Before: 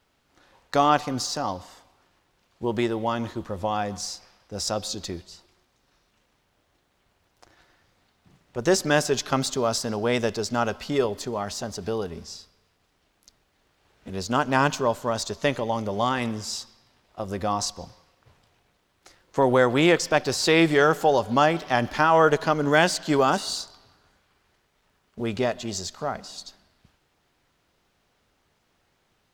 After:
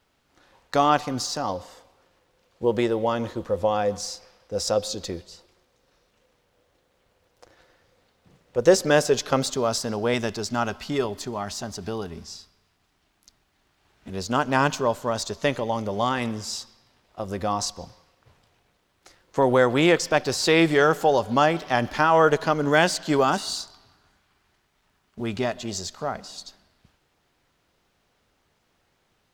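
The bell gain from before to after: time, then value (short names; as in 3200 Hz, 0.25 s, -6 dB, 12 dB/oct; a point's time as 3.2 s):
bell 500 Hz 0.3 oct
+1 dB
from 1.49 s +12 dB
from 9.5 s +1 dB
from 10.14 s -9 dB
from 14.11 s +1 dB
from 23.24 s -8 dB
from 25.56 s +1 dB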